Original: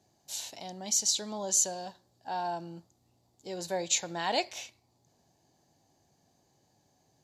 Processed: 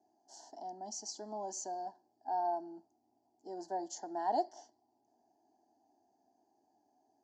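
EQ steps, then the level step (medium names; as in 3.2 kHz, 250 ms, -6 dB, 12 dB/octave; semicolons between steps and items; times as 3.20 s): Butterworth band-stop 2.4 kHz, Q 0.6; cabinet simulation 360–4100 Hz, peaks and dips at 390 Hz -6 dB, 570 Hz -5 dB, 870 Hz -4 dB, 1.4 kHz -9 dB, 2.5 kHz -9 dB; static phaser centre 770 Hz, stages 8; +5.5 dB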